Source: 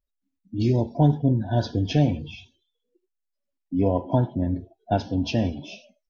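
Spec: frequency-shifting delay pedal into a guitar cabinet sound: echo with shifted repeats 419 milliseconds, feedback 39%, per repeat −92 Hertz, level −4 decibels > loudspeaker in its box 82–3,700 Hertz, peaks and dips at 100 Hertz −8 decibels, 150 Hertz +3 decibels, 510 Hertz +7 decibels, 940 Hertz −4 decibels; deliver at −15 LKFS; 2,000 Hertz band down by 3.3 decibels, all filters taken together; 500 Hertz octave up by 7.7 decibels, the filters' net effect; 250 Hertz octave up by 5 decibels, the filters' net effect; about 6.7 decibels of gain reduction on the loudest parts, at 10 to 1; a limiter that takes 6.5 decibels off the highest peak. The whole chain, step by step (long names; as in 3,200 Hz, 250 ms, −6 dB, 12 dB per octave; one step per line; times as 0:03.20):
parametric band 250 Hz +4.5 dB
parametric band 500 Hz +4.5 dB
parametric band 2,000 Hz −5 dB
downward compressor 10 to 1, threshold −17 dBFS
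brickwall limiter −14.5 dBFS
echo with shifted repeats 419 ms, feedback 39%, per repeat −92 Hz, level −4 dB
loudspeaker in its box 82–3,700 Hz, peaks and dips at 100 Hz −8 dB, 150 Hz +3 dB, 510 Hz +7 dB, 940 Hz −4 dB
level +10 dB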